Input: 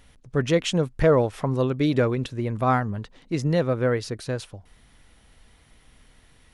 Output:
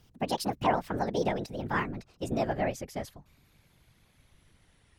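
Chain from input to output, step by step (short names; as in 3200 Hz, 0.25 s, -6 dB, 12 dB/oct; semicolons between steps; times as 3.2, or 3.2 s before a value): speed glide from 165% -> 97%; whisperiser; gain -8 dB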